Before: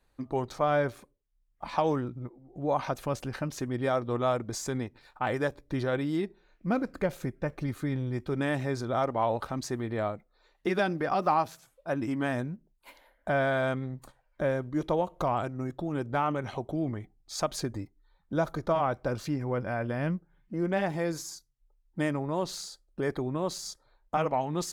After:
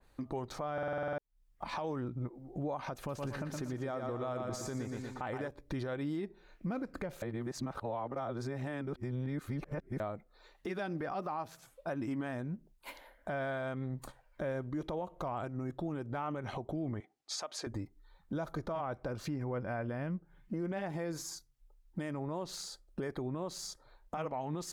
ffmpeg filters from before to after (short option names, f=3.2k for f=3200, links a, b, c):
-filter_complex "[0:a]asettb=1/sr,asplit=3[a][b][c];[a]atrim=end=2.974[d];[b]atrim=start=2.97:end=5.48,asetpts=PTS-STARTPTS,afade=t=in:d=0.004:c=qsin,afade=t=out:st=2.506:d=0.004:c=qsin,aecho=1:1:119|238|357|476|595:0.422|0.198|0.0932|0.0438|0.0206,atrim=end_sample=110691[e];[c]atrim=start=5.476[f];[d][e]acrossfade=d=0.004:c1=hsin:c2=qsin[g];[g][f]acrossfade=d=0.004:c1=qsin:c2=hsin,asettb=1/sr,asplit=3[h][i][j];[h]atrim=end=17.004[k];[i]atrim=start=17:end=17.67,asetpts=PTS-STARTPTS,afade=t=in:d=0.004:c=qsin,afade=t=out:st=0.666:d=0.004:c=qsin,highpass=500,lowpass=7.8k[l];[j]atrim=start=17.666[m];[k][l]acrossfade=d=0.004:c1=hsin:c2=qsin[n];[n][m]acrossfade=d=0.004:c1=qsin:c2=hsin,asplit=12[o][p][q][r][s][t][u][v][w][x][y][z];[o]atrim=end=0.782[aa];[p]atrim=start=0.728:end=0.782[ab];[q]atrim=start=0.728:end=0.782[ac];[r]atrim=start=0.728:end=0.782[ad];[s]atrim=start=0.728:end=0.782[ae];[t]atrim=start=0.728:end=0.782[af];[u]atrim=start=0.728:end=0.782[ag];[v]atrim=start=0.728:end=0.782[ah];[w]atrim=start=0.728:end=0.782[ai];[x]atrim=start=1.178:end=7.222[aj];[y]atrim=start=7.218:end=10.002,asetpts=PTS-STARTPTS,areverse[ak];[z]atrim=start=9.998[al];[aa][ab]acrossfade=d=0.004:c1=hsin:c2=hsin[am];[am][ac]acrossfade=d=0.004:c1=hsin:c2=hsin[an];[an][ad]acrossfade=d=0.004:c1=hsin:c2=hsin[ao];[ao][ae]acrossfade=d=0.004:c1=hsin:c2=hsin[ap];[ap][af]acrossfade=d=0.004:c1=hsin:c2=hsin[aq];[aq][ag]acrossfade=d=0.004:c1=hsin:c2=hsin[ar];[ar][ah]acrossfade=d=0.004:c1=hsin:c2=hsin[as];[as][ai]acrossfade=d=0.004:c1=hsin:c2=hsin[at];[at][aj]acrossfade=d=0.004:c1=hsin:c2=hsin[au];[au][ak]acrossfade=d=0.004:c1=hsin:c2=hsin[av];[av][al]acrossfade=d=0.004:c1=hsin:c2=hsin,acompressor=threshold=-40dB:ratio=2,alimiter=level_in=9dB:limit=-24dB:level=0:latency=1:release=132,volume=-9dB,adynamicequalizer=threshold=0.00112:dfrequency=2300:dqfactor=0.7:tfrequency=2300:tqfactor=0.7:attack=5:release=100:ratio=0.375:range=2.5:mode=cutabove:tftype=highshelf,volume=4.5dB"